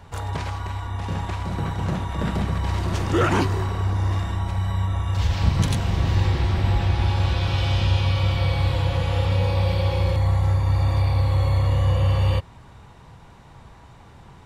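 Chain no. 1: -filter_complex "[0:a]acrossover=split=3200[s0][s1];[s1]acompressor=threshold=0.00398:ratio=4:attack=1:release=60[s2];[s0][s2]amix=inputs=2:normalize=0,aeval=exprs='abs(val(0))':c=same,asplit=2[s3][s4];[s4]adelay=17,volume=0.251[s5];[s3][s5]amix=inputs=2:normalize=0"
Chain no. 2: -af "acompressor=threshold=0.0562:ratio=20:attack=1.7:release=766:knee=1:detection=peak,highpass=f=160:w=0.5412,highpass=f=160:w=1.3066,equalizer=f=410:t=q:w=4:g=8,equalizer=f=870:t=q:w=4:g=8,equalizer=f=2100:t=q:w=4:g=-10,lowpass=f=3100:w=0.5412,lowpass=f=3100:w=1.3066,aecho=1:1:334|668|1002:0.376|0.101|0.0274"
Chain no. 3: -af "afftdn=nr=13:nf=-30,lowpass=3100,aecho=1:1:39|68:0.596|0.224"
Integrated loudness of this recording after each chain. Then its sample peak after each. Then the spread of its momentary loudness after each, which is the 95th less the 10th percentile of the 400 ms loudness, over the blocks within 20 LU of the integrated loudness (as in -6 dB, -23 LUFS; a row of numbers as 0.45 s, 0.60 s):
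-27.5 LUFS, -37.0 LUFS, -22.0 LUFS; -6.0 dBFS, -19.5 dBFS, -7.5 dBFS; 7 LU, 13 LU, 9 LU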